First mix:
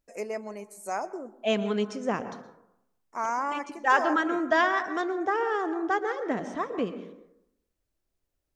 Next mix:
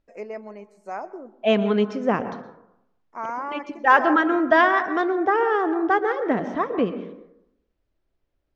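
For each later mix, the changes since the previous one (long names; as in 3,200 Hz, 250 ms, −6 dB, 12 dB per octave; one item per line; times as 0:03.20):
second voice +7.5 dB
master: add high-frequency loss of the air 210 metres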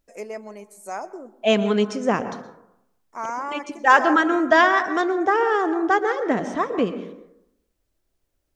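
first voice: remove Butterworth band-reject 3,400 Hz, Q 4.7
master: remove high-frequency loss of the air 210 metres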